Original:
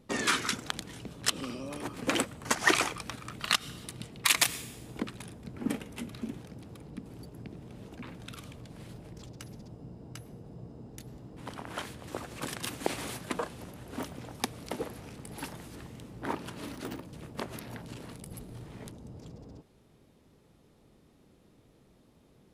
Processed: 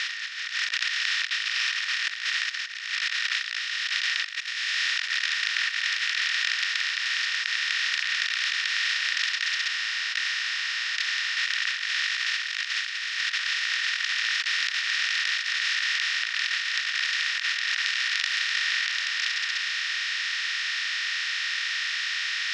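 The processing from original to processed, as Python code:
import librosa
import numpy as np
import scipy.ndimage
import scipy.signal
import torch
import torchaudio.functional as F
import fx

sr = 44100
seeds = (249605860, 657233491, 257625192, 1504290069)

y = fx.over_compress(x, sr, threshold_db=-30.0, ratio=-0.5, at=(3.49, 3.94))
y = fx.over_compress(y, sr, threshold_db=-44.0, ratio=-0.5, at=(13.54, 14.16), fade=0.02)
y = fx.bin_compress(y, sr, power=0.2)
y = scipy.signal.sosfilt(scipy.signal.cheby1(3, 1.0, [1600.0, 5500.0], 'bandpass', fs=sr, output='sos'), y)
y = fx.over_compress(y, sr, threshold_db=-27.0, ratio=-0.5)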